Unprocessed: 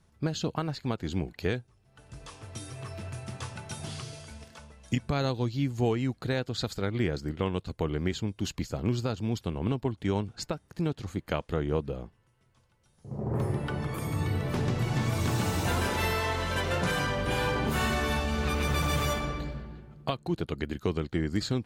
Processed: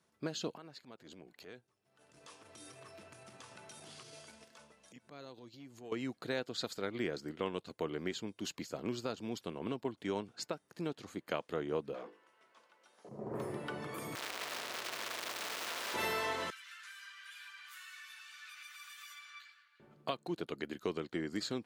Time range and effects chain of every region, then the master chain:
0.56–5.92 compressor 4:1, threshold -39 dBFS + transient shaper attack -11 dB, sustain -4 dB
11.94–13.09 HPF 240 Hz + notches 50/100/150/200/250/300/350/400/450/500 Hz + overdrive pedal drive 22 dB, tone 1700 Hz, clips at -30.5 dBFS
14.15–15.94 infinite clipping + three-band isolator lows -19 dB, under 510 Hz, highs -23 dB, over 4700 Hz + spectral compressor 2:1
16.5–19.8 steep high-pass 1400 Hz + compressor 5:1, threshold -41 dBFS + ensemble effect
whole clip: HPF 270 Hz 12 dB/oct; notch 820 Hz, Q 15; gain -5 dB

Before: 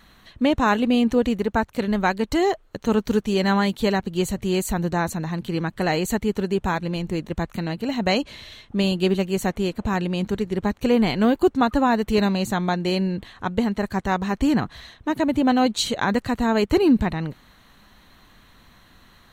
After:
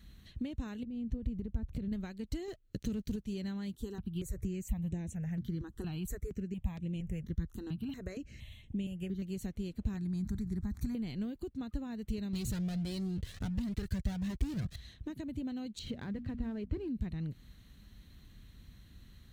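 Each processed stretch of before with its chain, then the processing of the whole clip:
0.83–1.92 tilt -3 dB/oct + compressor, threshold -27 dBFS
2.48–3.16 bell 890 Hz -7.5 dB 0.83 oct + sample leveller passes 2
3.75–9.22 bell 4400 Hz -10 dB 0.3 oct + step phaser 4.3 Hz 610–4700 Hz
9.97–10.95 fixed phaser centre 1200 Hz, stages 4 + fast leveller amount 50%
12.33–14.76 sample leveller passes 5 + cascading flanger rising 1.5 Hz
15.79–16.88 LPF 2300 Hz + notches 60/120/180/240/300 Hz + sample leveller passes 1
whole clip: compressor 6:1, threshold -30 dBFS; HPF 43 Hz; passive tone stack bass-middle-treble 10-0-1; gain +12.5 dB

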